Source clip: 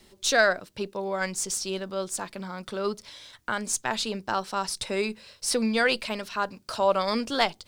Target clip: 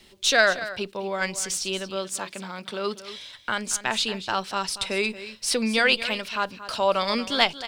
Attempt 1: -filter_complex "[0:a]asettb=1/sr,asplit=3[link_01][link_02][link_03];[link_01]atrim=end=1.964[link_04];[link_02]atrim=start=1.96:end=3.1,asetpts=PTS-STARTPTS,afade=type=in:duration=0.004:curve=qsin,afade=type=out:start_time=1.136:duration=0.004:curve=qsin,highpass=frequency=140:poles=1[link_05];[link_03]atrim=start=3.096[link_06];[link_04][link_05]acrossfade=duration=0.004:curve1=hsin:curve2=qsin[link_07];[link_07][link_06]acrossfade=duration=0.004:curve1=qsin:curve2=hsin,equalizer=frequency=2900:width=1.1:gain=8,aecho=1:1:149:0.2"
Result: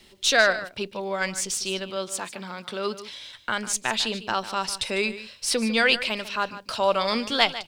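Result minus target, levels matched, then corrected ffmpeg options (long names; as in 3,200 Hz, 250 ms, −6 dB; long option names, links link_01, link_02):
echo 81 ms early
-filter_complex "[0:a]asettb=1/sr,asplit=3[link_01][link_02][link_03];[link_01]atrim=end=1.964[link_04];[link_02]atrim=start=1.96:end=3.1,asetpts=PTS-STARTPTS,afade=type=in:duration=0.004:curve=qsin,afade=type=out:start_time=1.136:duration=0.004:curve=qsin,highpass=frequency=140:poles=1[link_05];[link_03]atrim=start=3.096[link_06];[link_04][link_05]acrossfade=duration=0.004:curve1=hsin:curve2=qsin[link_07];[link_07][link_06]acrossfade=duration=0.004:curve1=qsin:curve2=hsin,equalizer=frequency=2900:width=1.1:gain=8,aecho=1:1:230:0.2"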